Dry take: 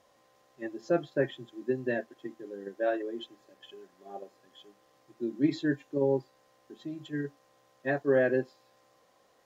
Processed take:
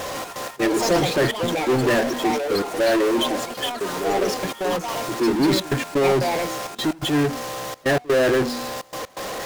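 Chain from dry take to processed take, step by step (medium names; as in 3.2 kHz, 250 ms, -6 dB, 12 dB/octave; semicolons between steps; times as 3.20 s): de-hum 243.4 Hz, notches 5; in parallel at -3 dB: compressor with a negative ratio -32 dBFS; on the sum: trance gate "xx.x.xxxx" 126 bpm -60 dB; power-law waveshaper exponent 0.35; ever faster or slower copies 147 ms, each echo +5 st, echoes 3, each echo -6 dB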